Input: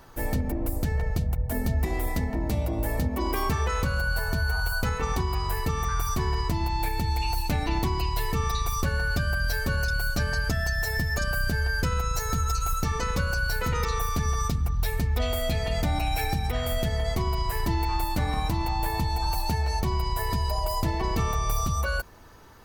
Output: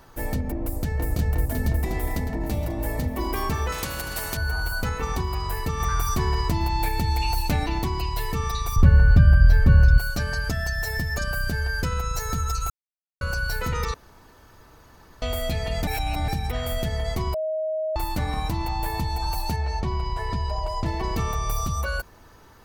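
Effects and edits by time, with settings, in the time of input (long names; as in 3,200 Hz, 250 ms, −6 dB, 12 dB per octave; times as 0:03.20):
0:00.63–0:01.09: delay throw 360 ms, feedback 75%, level −1 dB
0:01.86–0:02.94: delay throw 540 ms, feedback 80%, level −16 dB
0:03.72–0:04.37: every bin compressed towards the loudest bin 2 to 1
0:05.80–0:07.66: clip gain +3 dB
0:08.76–0:09.98: bass and treble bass +14 dB, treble −13 dB
0:12.70–0:13.21: silence
0:13.94–0:15.22: fill with room tone
0:15.87–0:16.28: reverse
0:17.34–0:17.96: beep over 629 Hz −23.5 dBFS
0:19.56–0:20.86: high-frequency loss of the air 97 metres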